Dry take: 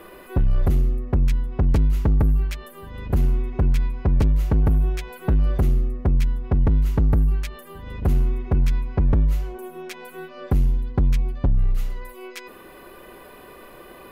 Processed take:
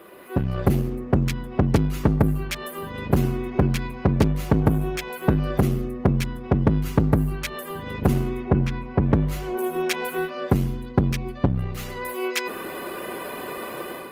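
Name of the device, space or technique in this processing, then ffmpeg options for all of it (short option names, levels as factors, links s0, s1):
video call: -filter_complex "[0:a]asettb=1/sr,asplit=3[s0][s1][s2];[s0]atrim=end=8.444[s3];[s1]atrim=start=8.44:end=9.03,asetpts=PTS-STARTPTS,afade=t=in:d=0.004:c=qsin,afade=t=out:st=0.586:d=0.004:c=qsin,aemphasis=mode=reproduction:type=75kf[s4];[s2]atrim=start=9.026[s5];[s3][s4]acrossfade=d=0.004:c1=hsin:c2=qsin[s6];[s6][s5]acrossfade=d=0.004:c1=qsin:c2=hsin,highpass=130,dynaudnorm=f=150:g=5:m=4.47,volume=0.841" -ar 48000 -c:a libopus -b:a 20k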